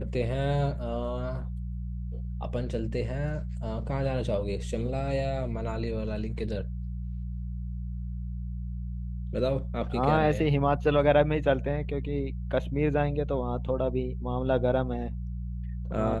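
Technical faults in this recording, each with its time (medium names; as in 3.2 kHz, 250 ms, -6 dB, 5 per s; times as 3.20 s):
hum 60 Hz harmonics 3 -34 dBFS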